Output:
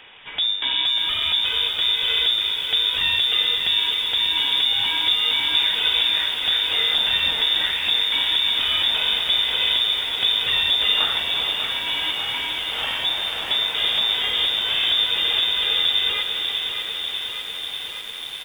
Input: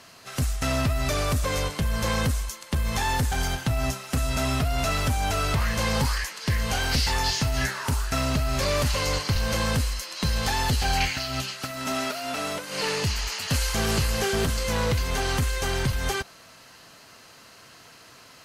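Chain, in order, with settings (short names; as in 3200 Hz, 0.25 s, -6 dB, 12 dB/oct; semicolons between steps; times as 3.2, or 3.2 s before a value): in parallel at +1.5 dB: compressor 12:1, threshold -37 dBFS, peak gain reduction 18 dB; on the sum: air absorption 180 m; frequency-shifting echo 0.345 s, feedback 59%, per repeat +53 Hz, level -10.5 dB; on a send at -17 dB: reverb RT60 0.60 s, pre-delay 6 ms; on the sum: inverted band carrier 3600 Hz; lo-fi delay 0.594 s, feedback 80%, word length 7-bit, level -7 dB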